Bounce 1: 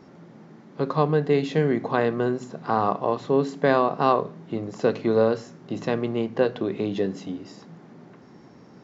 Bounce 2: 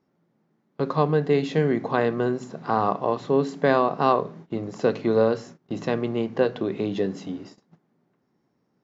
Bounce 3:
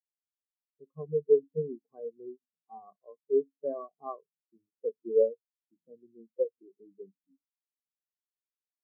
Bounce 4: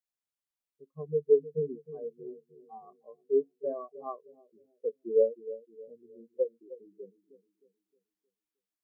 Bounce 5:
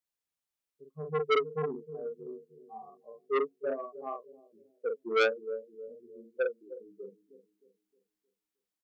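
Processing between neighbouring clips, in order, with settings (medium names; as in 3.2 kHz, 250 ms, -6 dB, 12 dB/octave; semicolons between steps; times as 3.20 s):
gate -41 dBFS, range -22 dB
spectral contrast expander 4:1; trim -6.5 dB
bucket-brigade echo 310 ms, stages 1024, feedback 42%, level -14.5 dB
doubling 45 ms -4 dB; transformer saturation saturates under 1.9 kHz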